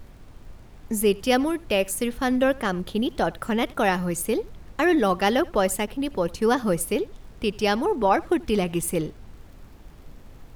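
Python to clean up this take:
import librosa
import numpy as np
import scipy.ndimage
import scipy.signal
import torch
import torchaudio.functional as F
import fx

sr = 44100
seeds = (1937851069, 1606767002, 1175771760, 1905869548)

y = fx.fix_declick_ar(x, sr, threshold=6.5)
y = fx.noise_reduce(y, sr, print_start_s=9.48, print_end_s=9.98, reduce_db=24.0)
y = fx.fix_echo_inverse(y, sr, delay_ms=84, level_db=-23.5)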